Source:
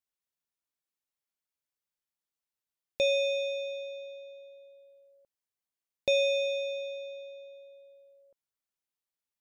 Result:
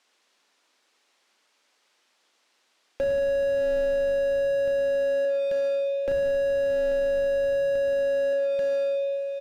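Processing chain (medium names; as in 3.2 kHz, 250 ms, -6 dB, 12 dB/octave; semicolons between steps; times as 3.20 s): low-pass 5.2 kHz 12 dB/octave; hum notches 50/100/150/200/250/300/350/400/450 Hz; low-pass that closes with the level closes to 1.4 kHz, closed at -29 dBFS; high-pass 260 Hz 24 dB/octave; waveshaping leveller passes 1; compression 8:1, threshold -36 dBFS, peak gain reduction 13.5 dB; feedback delay 838 ms, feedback 48%, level -16 dB; Schroeder reverb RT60 1.1 s, combs from 30 ms, DRR 9.5 dB; loudness maximiser +32.5 dB; slew-rate limiter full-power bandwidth 50 Hz; trim -2 dB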